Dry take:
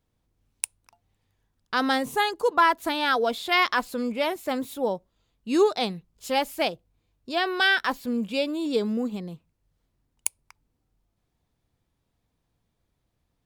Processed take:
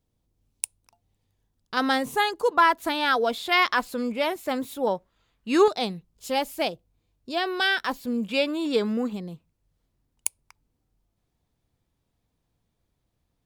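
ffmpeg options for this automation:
-af "asetnsamples=n=441:p=0,asendcmd='1.77 equalizer g 1;4.87 equalizer g 9;5.68 equalizer g -3;8.29 equalizer g 8;9.13 equalizer g -2',equalizer=f=1.6k:t=o:w=1.8:g=-7"

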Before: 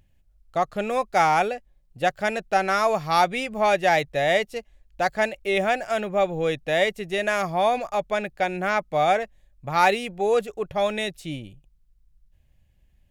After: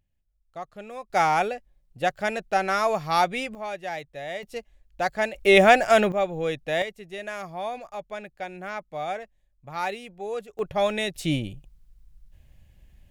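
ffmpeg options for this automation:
-af "asetnsamples=n=441:p=0,asendcmd='1.1 volume volume -2dB;3.55 volume volume -13dB;4.43 volume volume -2.5dB;5.35 volume volume 7.5dB;6.12 volume volume -3dB;6.82 volume volume -10.5dB;10.59 volume volume 0dB;11.16 volume volume 7.5dB',volume=-13.5dB"

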